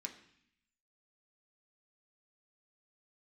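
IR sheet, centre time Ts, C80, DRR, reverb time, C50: 13 ms, 13.5 dB, 2.0 dB, 0.65 s, 11.0 dB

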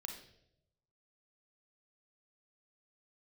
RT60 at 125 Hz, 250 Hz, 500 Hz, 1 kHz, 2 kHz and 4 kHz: 1.2 s, 0.90 s, 1.0 s, 0.65 s, 0.65 s, 0.65 s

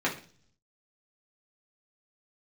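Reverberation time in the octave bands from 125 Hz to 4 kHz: 0.95 s, 0.65 s, 0.50 s, 0.40 s, 0.40 s, 0.55 s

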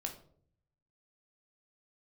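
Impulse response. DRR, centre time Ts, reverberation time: 2.0 dB, 15 ms, 0.60 s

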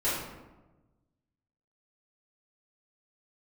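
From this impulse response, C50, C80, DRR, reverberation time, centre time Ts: 0.5 dB, 3.5 dB, -11.0 dB, 1.1 s, 69 ms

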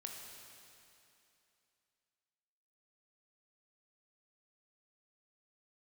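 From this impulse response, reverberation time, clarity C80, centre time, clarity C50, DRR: 2.8 s, 3.0 dB, 103 ms, 2.0 dB, 0.5 dB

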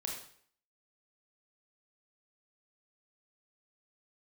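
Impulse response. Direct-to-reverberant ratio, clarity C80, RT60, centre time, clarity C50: -0.5 dB, 7.5 dB, 0.60 s, 37 ms, 3.5 dB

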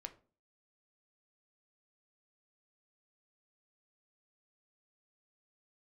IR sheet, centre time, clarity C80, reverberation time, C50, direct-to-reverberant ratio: 7 ms, 20.5 dB, 0.40 s, 16.0 dB, 6.5 dB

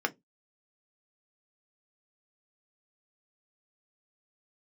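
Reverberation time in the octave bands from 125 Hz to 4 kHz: 0.25 s, 0.25 s, 0.20 s, 0.15 s, 0.10 s, 0.15 s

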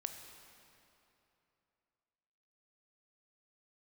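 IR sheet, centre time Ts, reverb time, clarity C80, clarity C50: 48 ms, 3.0 s, 7.5 dB, 6.5 dB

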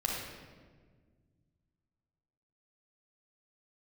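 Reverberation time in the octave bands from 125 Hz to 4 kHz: 2.9 s, 2.5 s, 1.8 s, 1.3 s, 1.2 s, 1.0 s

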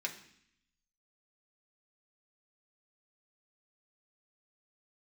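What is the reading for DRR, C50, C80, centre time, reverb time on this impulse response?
-0.5 dB, 11.0 dB, 14.0 dB, 14 ms, 0.65 s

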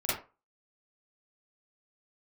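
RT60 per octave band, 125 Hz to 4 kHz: 0.25 s, 0.30 s, 0.30 s, 0.30 s, 0.25 s, 0.20 s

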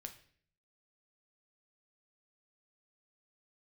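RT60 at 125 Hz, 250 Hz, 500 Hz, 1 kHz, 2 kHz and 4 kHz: 0.80 s, 0.70 s, 0.60 s, 0.45 s, 0.55 s, 0.50 s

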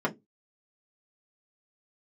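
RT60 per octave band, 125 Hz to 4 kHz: 0.25 s, 0.25 s, 0.20 s, 0.15 s, 0.10 s, 0.10 s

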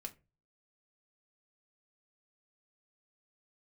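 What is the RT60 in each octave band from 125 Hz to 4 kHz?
0.55 s, 0.35 s, 0.35 s, 0.25 s, 0.25 s, 0.15 s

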